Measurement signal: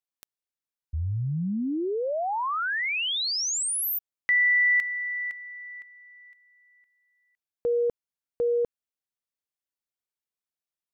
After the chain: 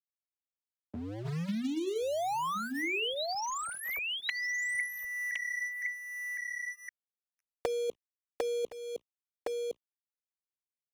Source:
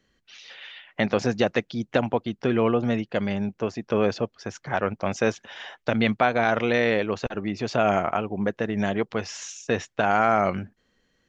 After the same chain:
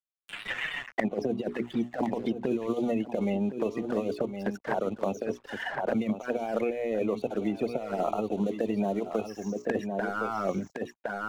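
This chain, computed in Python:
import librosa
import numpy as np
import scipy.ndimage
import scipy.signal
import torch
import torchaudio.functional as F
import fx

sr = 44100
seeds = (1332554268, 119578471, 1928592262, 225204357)

y = scipy.signal.sosfilt(scipy.signal.butter(2, 220.0, 'highpass', fs=sr, output='sos'), x)
y = fx.high_shelf(y, sr, hz=4100.0, db=-7.5)
y = fx.hum_notches(y, sr, base_hz=60, count=7)
y = fx.over_compress(y, sr, threshold_db=-26.0, ratio=-0.5)
y = fx.spec_topn(y, sr, count=32)
y = np.sign(y) * np.maximum(np.abs(y) - 10.0 ** (-47.5 / 20.0), 0.0)
y = fx.env_flanger(y, sr, rest_ms=11.0, full_db=-27.0)
y = y + 10.0 ** (-11.5 / 20.0) * np.pad(y, (int(1063 * sr / 1000.0), 0))[:len(y)]
y = fx.band_squash(y, sr, depth_pct=100)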